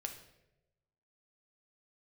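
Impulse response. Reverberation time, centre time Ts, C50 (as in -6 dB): 0.95 s, 17 ms, 8.5 dB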